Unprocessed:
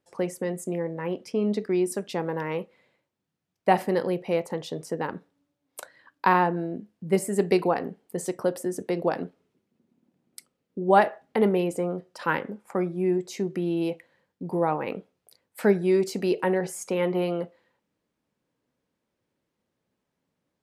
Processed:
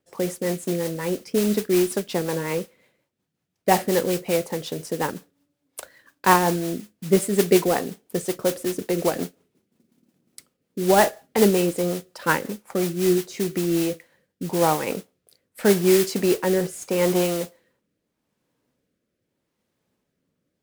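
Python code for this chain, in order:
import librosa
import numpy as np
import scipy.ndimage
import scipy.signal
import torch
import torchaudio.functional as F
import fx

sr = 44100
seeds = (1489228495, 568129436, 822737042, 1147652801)

y = fx.mod_noise(x, sr, seeds[0], snr_db=11)
y = fx.rotary_switch(y, sr, hz=5.5, then_hz=0.8, switch_at_s=13.53)
y = y * librosa.db_to_amplitude(5.5)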